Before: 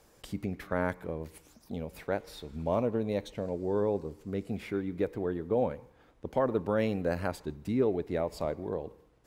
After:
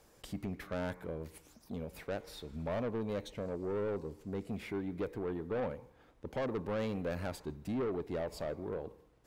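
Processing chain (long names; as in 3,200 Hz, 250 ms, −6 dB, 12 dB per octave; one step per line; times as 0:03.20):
soft clipping −29 dBFS, distortion −9 dB
level −2 dB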